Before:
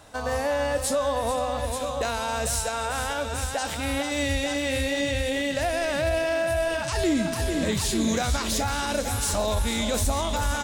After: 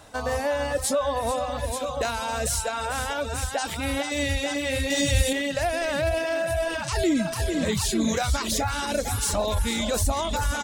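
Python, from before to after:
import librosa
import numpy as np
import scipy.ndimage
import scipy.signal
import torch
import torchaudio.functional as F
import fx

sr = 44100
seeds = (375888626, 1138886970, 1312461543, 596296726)

y = fx.dereverb_blind(x, sr, rt60_s=0.76)
y = fx.bass_treble(y, sr, bass_db=8, treble_db=12, at=(4.9, 5.33))
y = y * librosa.db_to_amplitude(1.5)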